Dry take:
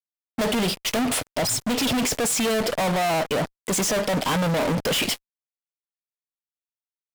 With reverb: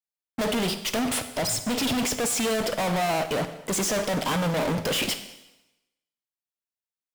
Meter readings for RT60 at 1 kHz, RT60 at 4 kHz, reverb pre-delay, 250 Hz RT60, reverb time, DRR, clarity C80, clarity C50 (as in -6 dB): 1.0 s, 0.95 s, 34 ms, 0.90 s, 1.0 s, 10.0 dB, 13.0 dB, 11.5 dB